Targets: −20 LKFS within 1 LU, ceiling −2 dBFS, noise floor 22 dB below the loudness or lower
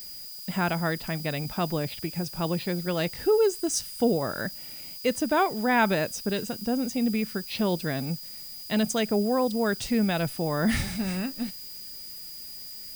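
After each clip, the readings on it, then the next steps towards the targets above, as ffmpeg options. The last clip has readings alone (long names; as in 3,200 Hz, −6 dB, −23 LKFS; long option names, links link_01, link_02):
interfering tone 4,900 Hz; level of the tone −42 dBFS; background noise floor −41 dBFS; target noise floor −50 dBFS; integrated loudness −28.0 LKFS; sample peak −11.0 dBFS; target loudness −20.0 LKFS
→ -af "bandreject=frequency=4900:width=30"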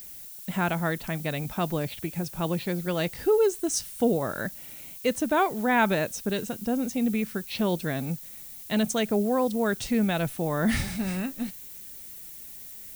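interfering tone none found; background noise floor −43 dBFS; target noise floor −50 dBFS
→ -af "afftdn=noise_reduction=7:noise_floor=-43"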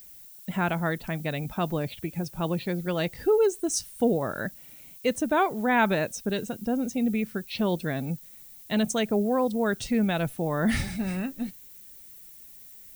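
background noise floor −48 dBFS; target noise floor −50 dBFS
→ -af "afftdn=noise_reduction=6:noise_floor=-48"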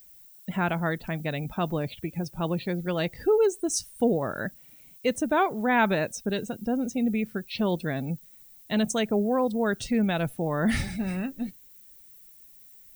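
background noise floor −52 dBFS; integrated loudness −27.5 LKFS; sample peak −11.0 dBFS; target loudness −20.0 LKFS
→ -af "volume=7.5dB"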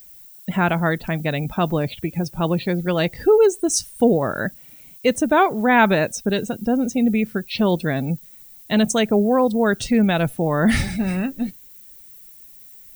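integrated loudness −20.0 LKFS; sample peak −3.5 dBFS; background noise floor −45 dBFS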